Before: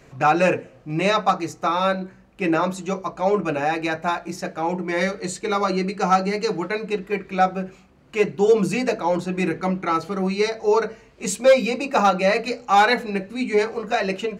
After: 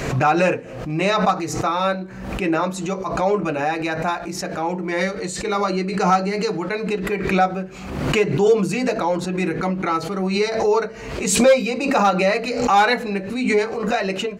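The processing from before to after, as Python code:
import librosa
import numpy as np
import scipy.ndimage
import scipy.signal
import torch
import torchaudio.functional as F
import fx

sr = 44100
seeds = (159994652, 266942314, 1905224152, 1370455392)

y = fx.pre_swell(x, sr, db_per_s=52.0)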